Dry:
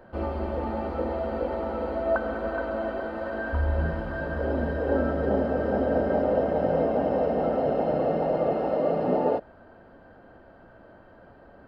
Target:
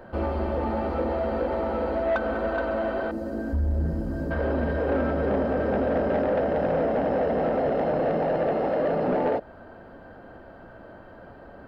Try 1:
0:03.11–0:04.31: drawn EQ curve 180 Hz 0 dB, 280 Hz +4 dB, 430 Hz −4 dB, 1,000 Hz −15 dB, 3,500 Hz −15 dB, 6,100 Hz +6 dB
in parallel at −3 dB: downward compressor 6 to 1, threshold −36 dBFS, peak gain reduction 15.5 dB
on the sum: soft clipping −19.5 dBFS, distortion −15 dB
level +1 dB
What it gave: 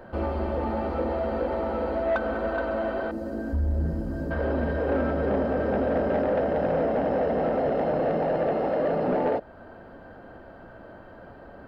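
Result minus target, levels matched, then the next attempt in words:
downward compressor: peak gain reduction +5 dB
0:03.11–0:04.31: drawn EQ curve 180 Hz 0 dB, 280 Hz +4 dB, 430 Hz −4 dB, 1,000 Hz −15 dB, 3,500 Hz −15 dB, 6,100 Hz +6 dB
in parallel at −3 dB: downward compressor 6 to 1, threshold −30 dBFS, peak gain reduction 10.5 dB
on the sum: soft clipping −19.5 dBFS, distortion −15 dB
level +1 dB

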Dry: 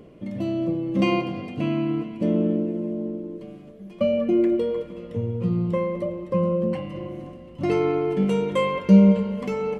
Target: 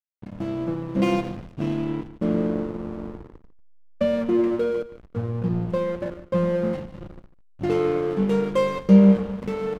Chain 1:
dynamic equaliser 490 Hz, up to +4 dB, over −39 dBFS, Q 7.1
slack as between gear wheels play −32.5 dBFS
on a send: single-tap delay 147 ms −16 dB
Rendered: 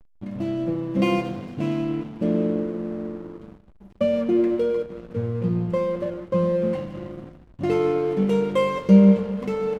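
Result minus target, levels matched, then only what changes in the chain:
slack as between gear wheels: distortion −8 dB
change: slack as between gear wheels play −23.5 dBFS

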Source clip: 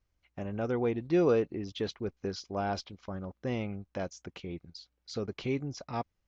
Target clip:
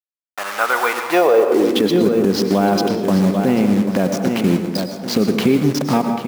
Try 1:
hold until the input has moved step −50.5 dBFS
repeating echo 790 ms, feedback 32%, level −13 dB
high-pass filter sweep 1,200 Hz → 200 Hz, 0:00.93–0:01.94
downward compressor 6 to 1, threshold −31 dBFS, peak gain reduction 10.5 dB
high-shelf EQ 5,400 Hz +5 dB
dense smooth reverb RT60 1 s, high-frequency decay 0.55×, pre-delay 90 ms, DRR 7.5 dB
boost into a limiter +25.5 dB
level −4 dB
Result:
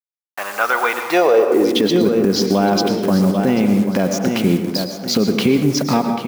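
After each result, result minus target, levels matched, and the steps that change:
hold until the input has moved: distortion −8 dB; 8,000 Hz band +2.5 dB
change: hold until the input has moved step −42 dBFS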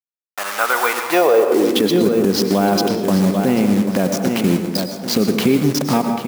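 8,000 Hz band +4.5 dB
change: high-shelf EQ 5,400 Hz −2 dB

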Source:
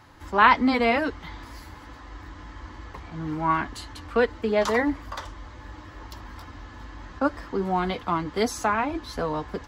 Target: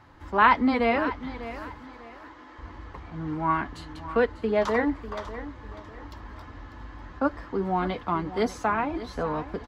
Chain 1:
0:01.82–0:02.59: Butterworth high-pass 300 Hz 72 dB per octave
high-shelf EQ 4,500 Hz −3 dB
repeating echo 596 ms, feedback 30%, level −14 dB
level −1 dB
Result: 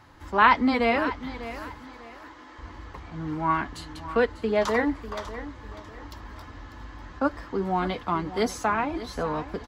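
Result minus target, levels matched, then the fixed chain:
8,000 Hz band +6.5 dB
0:01.82–0:02.59: Butterworth high-pass 300 Hz 72 dB per octave
high-shelf EQ 4,500 Hz −13 dB
repeating echo 596 ms, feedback 30%, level −14 dB
level −1 dB

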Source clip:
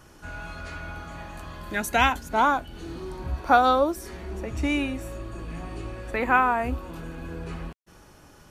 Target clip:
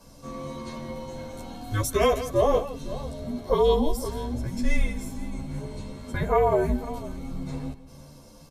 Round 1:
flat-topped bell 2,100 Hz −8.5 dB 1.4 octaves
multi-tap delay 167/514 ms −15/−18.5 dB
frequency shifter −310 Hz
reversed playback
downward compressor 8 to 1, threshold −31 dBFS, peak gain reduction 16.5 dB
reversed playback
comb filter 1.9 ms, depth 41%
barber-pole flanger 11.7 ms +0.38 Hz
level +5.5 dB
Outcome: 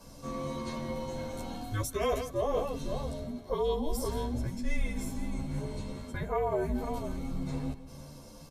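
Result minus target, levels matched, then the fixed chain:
downward compressor: peak gain reduction +9.5 dB
flat-topped bell 2,100 Hz −8.5 dB 1.4 octaves
multi-tap delay 167/514 ms −15/−18.5 dB
frequency shifter −310 Hz
reversed playback
downward compressor 8 to 1, threshold −20 dBFS, peak gain reduction 7 dB
reversed playback
comb filter 1.9 ms, depth 41%
barber-pole flanger 11.7 ms +0.38 Hz
level +5.5 dB

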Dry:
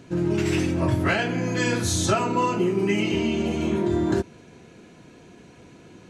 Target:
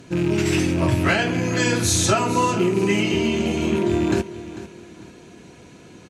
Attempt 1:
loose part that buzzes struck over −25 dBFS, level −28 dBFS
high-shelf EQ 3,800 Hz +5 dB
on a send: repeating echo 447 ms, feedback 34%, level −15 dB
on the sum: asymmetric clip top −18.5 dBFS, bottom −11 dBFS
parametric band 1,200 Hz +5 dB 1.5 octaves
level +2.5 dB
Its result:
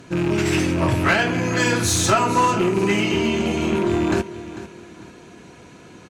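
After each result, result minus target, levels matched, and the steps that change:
asymmetric clip: distortion +9 dB; 1,000 Hz band +3.0 dB
change: asymmetric clip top −8.5 dBFS, bottom −11 dBFS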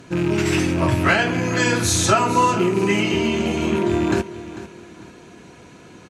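1,000 Hz band +3.0 dB
remove: parametric band 1,200 Hz +5 dB 1.5 octaves

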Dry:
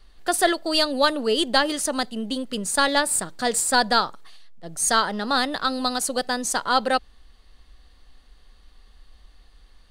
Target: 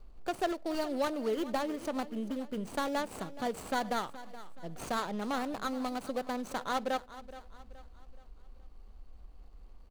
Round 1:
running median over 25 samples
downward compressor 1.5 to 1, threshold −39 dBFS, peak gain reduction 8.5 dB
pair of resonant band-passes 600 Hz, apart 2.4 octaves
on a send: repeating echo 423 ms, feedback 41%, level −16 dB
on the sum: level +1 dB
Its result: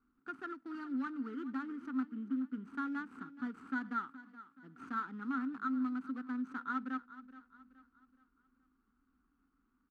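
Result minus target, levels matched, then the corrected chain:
500 Hz band −17.0 dB; downward compressor: peak gain reduction −3 dB
running median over 25 samples
downward compressor 1.5 to 1, threshold −48.5 dBFS, peak gain reduction 11.5 dB
on a send: repeating echo 423 ms, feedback 41%, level −16 dB
on the sum: level +1 dB

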